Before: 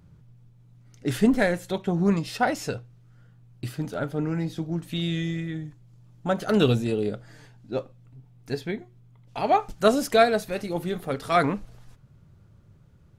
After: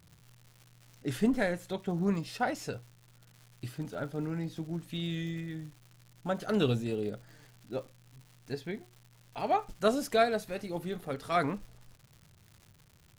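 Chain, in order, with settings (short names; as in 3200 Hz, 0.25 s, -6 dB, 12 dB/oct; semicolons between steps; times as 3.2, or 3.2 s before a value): crackle 230/s -38 dBFS; gain -7.5 dB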